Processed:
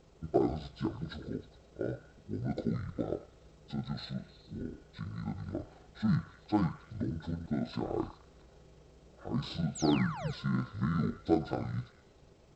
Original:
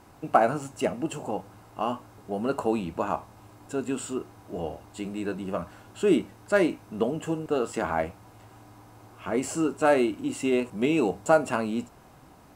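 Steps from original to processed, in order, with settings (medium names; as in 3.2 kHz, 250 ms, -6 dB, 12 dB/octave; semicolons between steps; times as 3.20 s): rotating-head pitch shifter -11.5 st; painted sound fall, 9.75–10.31 s, 410–8400 Hz -36 dBFS; repeats whose band climbs or falls 104 ms, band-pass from 1.1 kHz, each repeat 0.7 oct, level -9 dB; trim -6 dB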